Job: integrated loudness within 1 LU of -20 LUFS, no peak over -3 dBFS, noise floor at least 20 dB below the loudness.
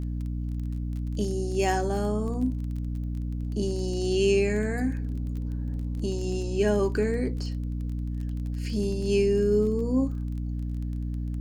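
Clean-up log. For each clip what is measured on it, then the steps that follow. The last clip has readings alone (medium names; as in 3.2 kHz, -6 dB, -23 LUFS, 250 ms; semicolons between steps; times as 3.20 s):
tick rate 22 per s; hum 60 Hz; highest harmonic 300 Hz; hum level -28 dBFS; loudness -28.0 LUFS; peak level -11.0 dBFS; loudness target -20.0 LUFS
-> de-click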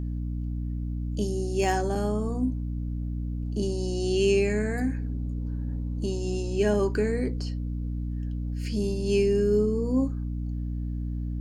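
tick rate 0 per s; hum 60 Hz; highest harmonic 300 Hz; hum level -28 dBFS
-> hum notches 60/120/180/240/300 Hz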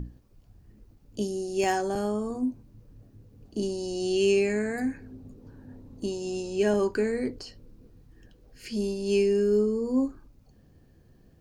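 hum not found; loudness -28.0 LUFS; peak level -12.5 dBFS; loudness target -20.0 LUFS
-> trim +8 dB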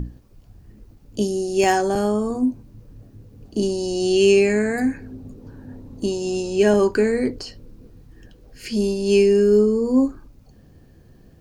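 loudness -20.0 LUFS; peak level -4.5 dBFS; noise floor -51 dBFS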